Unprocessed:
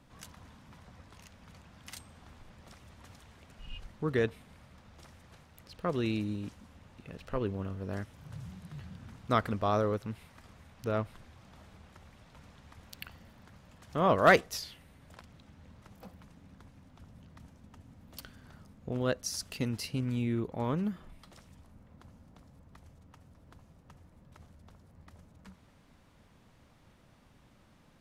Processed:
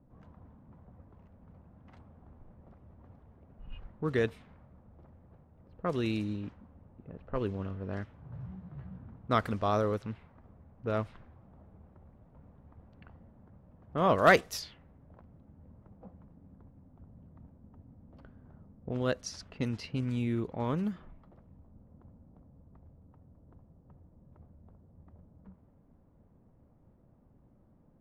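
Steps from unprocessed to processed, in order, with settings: level-controlled noise filter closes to 550 Hz, open at -27 dBFS; 8.21–9.02 s: doubling 16 ms -5 dB

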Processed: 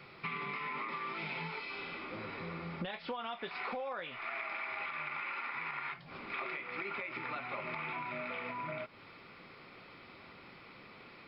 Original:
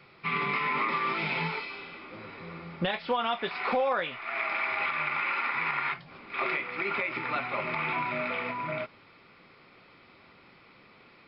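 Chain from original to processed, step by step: compression 6:1, threshold -40 dBFS, peak gain reduction 15.5 dB; trim +2 dB

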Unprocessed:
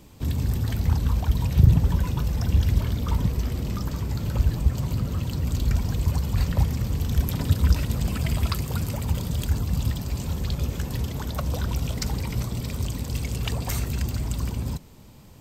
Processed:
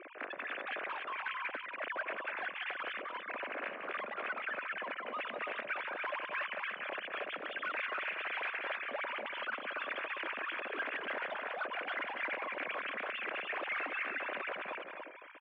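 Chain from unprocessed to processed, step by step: formants replaced by sine waves; compressor with a negative ratio -28 dBFS, ratio -0.5; saturation -29.5 dBFS, distortion -8 dB; cabinet simulation 490–2600 Hz, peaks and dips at 580 Hz +6 dB, 880 Hz -7 dB, 1.6 kHz +5 dB, 2.4 kHz +5 dB; on a send: loudspeakers at several distances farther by 64 m -10 dB, 98 m -5 dB; on the sum: trim -6.5 dB

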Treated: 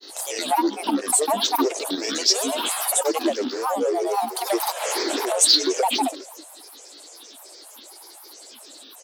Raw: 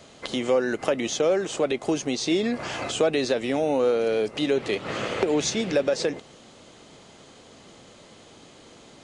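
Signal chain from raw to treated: peaking EQ 1.3 kHz -11 dB 2 oct; in parallel at -9 dB: sine folder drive 6 dB, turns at -13 dBFS; on the sum: elliptic high-pass 470 Hz, stop band 50 dB; band-stop 3.6 kHz, Q 5.2; on a send: feedback delay 125 ms, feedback 42%, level -17 dB; on the sum: gain riding within 4 dB 0.5 s; resonant high shelf 5 kHz +6.5 dB, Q 3; granulator 100 ms, grains 28 per s, pitch spread up and down by 12 st; trim +4.5 dB

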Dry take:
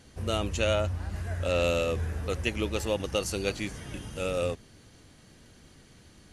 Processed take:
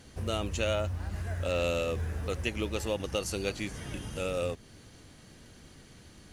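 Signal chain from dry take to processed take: in parallel at +3 dB: compression, threshold -36 dBFS, peak gain reduction 13.5 dB; on the sum: companded quantiser 8-bit; trim -6 dB

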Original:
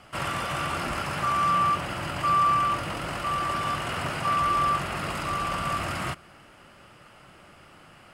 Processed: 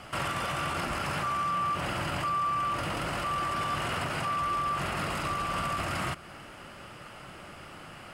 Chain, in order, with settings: in parallel at -1 dB: compression, threshold -37 dBFS, peak gain reduction 16 dB; on the sum: peak limiter -23 dBFS, peak gain reduction 10 dB

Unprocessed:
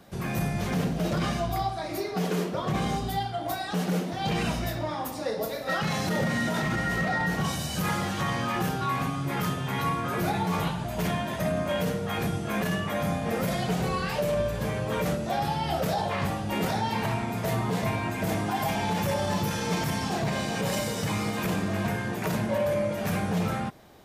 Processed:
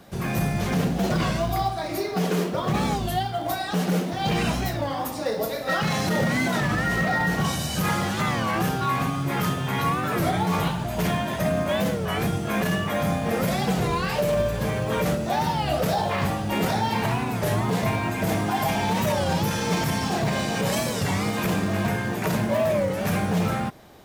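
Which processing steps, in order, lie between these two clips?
in parallel at -5 dB: short-mantissa float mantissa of 2-bit; on the sum: warped record 33 1/3 rpm, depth 160 cents

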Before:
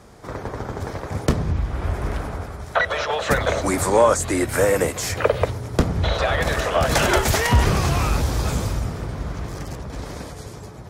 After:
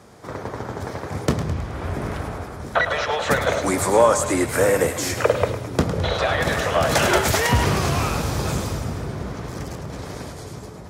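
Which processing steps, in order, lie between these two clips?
high-pass 88 Hz 12 dB/octave; two-band feedback delay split 530 Hz, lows 681 ms, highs 106 ms, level -10 dB

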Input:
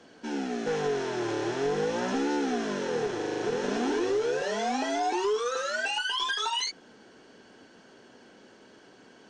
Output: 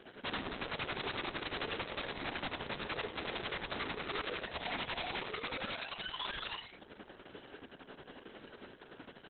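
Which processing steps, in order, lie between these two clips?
Chebyshev low-pass 4.4 kHz, order 5; hum notches 60/120/180/240/300/360/420/480/540/600 Hz; compression 5:1, threshold -36 dBFS, peak gain reduction 10.5 dB; flange 0.58 Hz, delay 4.9 ms, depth 2.8 ms, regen -70%; tremolo 11 Hz, depth 73%; integer overflow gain 43 dB; doubling 46 ms -8.5 dB; on a send: filtered feedback delay 834 ms, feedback 41%, low-pass 940 Hz, level -22.5 dB; on the sum: trim +10.5 dB; Opus 6 kbps 48 kHz

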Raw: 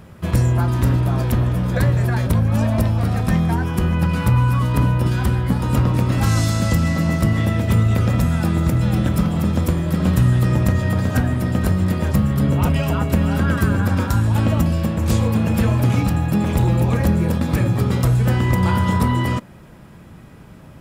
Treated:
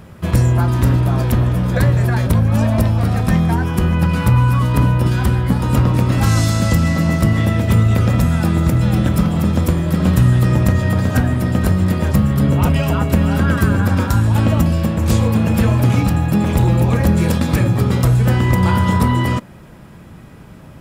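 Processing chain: 17.16–17.75 s: peaking EQ 5.7 kHz +10.5 dB -> -1 dB 2.9 oct; trim +3 dB

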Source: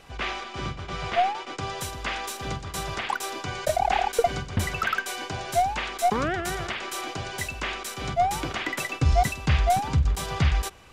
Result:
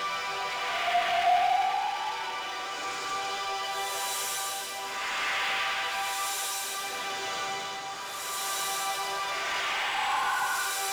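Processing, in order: high-pass 680 Hz 12 dB/octave; Paulstretch 4.7×, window 0.25 s, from 0.94 s; power-law waveshaper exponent 0.7; trim -3 dB

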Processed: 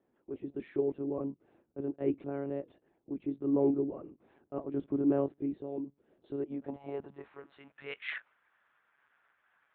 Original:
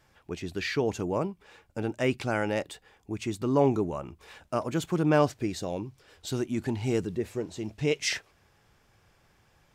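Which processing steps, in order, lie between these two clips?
dynamic bell 200 Hz, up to +5 dB, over -39 dBFS, Q 1.9; monotone LPC vocoder at 8 kHz 140 Hz; band-pass sweep 340 Hz -> 1.5 kHz, 6.21–7.53 s

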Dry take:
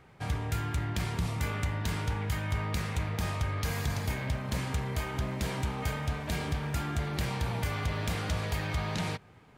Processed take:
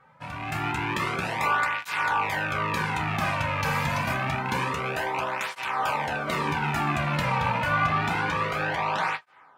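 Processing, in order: rattle on loud lows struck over -33 dBFS, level -27 dBFS; peaking EQ 1.1 kHz +14.5 dB 2 oct; level rider gain up to 11.5 dB; treble shelf 5.4 kHz -2 dB, from 7.21 s -8.5 dB; reverberation, pre-delay 3 ms, DRR 4.5 dB; cancelling through-zero flanger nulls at 0.27 Hz, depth 2.9 ms; trim -7.5 dB

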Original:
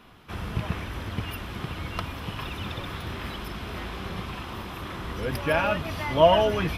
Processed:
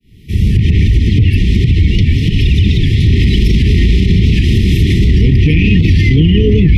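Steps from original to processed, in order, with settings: fade-in on the opening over 1.18 s; tone controls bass +14 dB, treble +4 dB; low-pass that closes with the level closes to 2.3 kHz, closed at -13.5 dBFS; 0.87–3.08 s: flange 1.2 Hz, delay 0.7 ms, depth 8.5 ms, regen -30%; brick-wall FIR band-stop 460–1800 Hz; loudness maximiser +21.5 dB; warped record 78 rpm, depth 100 cents; trim -1 dB

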